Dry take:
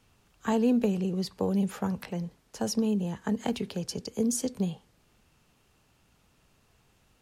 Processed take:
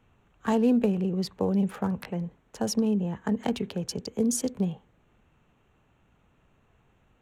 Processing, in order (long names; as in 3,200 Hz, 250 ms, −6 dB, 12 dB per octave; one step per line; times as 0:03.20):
adaptive Wiener filter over 9 samples
level +2 dB